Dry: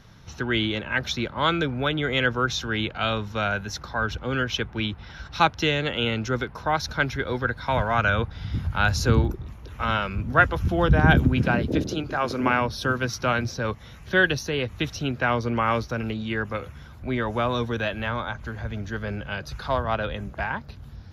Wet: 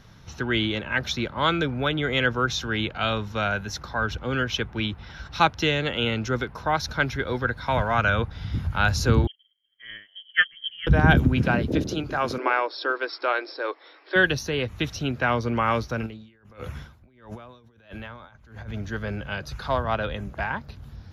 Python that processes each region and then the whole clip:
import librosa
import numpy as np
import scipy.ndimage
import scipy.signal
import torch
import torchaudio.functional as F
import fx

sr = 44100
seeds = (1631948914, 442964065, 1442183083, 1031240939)

y = fx.chain(x, sr, fx.fixed_phaser(hz=2300.0, stages=6),
    fx.freq_invert(carrier_hz=3200),
    fx.upward_expand(threshold_db=-39.0, expansion=2.5), at=(9.27, 10.87))
y = fx.chain(y, sr, fx.brickwall_bandpass(low_hz=280.0, high_hz=5500.0),
    fx.peak_eq(hz=2900.0, db=-7.0, octaves=0.27), at=(12.38, 14.16))
y = fx.chain(y, sr, fx.over_compress(threshold_db=-36.0, ratio=-1.0),
    fx.tremolo_db(hz=1.5, depth_db=21), at=(16.06, 18.74))